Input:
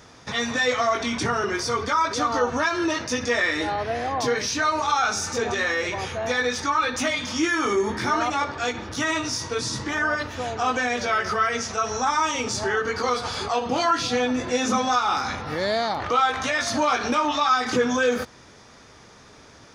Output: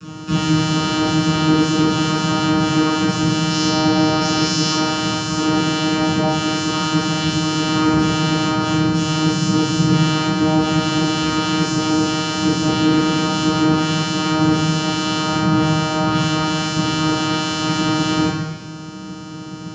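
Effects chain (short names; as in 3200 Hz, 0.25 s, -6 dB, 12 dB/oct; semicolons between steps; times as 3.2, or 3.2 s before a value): high shelf 4000 Hz +7 dB; wavefolder -26.5 dBFS; vocoder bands 8, saw 156 Hz; 3.5–4.73 bell 5300 Hz +9.5 dB 0.66 oct; reverb RT60 1.0 s, pre-delay 3 ms, DRR -10 dB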